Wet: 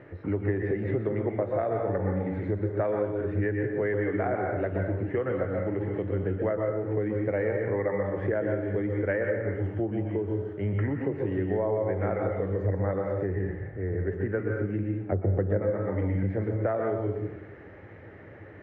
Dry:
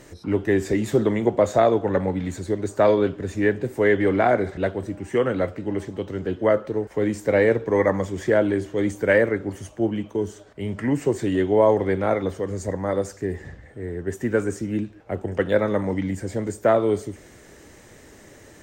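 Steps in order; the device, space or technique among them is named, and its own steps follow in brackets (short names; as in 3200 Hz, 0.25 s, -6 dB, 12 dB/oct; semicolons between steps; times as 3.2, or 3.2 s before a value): 15.12–15.62 tilt shelf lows +9.5 dB, about 1200 Hz; plate-style reverb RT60 0.64 s, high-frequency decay 0.8×, pre-delay 0.11 s, DRR 2 dB; bass amplifier (compressor 5:1, threshold -25 dBFS, peak gain reduction 16 dB; speaker cabinet 81–2100 Hz, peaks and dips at 96 Hz +7 dB, 240 Hz -6 dB, 1000 Hz -5 dB)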